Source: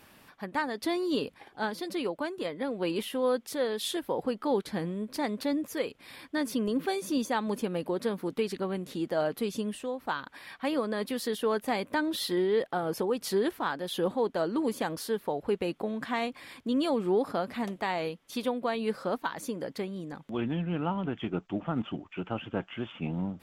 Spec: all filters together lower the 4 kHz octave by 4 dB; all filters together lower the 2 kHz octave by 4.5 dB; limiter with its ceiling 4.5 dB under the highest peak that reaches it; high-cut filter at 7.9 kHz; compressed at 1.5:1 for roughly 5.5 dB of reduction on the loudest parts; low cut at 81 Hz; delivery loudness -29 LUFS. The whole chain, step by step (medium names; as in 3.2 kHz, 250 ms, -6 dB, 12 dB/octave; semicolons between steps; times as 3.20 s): high-pass 81 Hz; low-pass 7.9 kHz; peaking EQ 2 kHz -5.5 dB; peaking EQ 4 kHz -3 dB; compression 1.5:1, threshold -39 dBFS; trim +9 dB; peak limiter -18 dBFS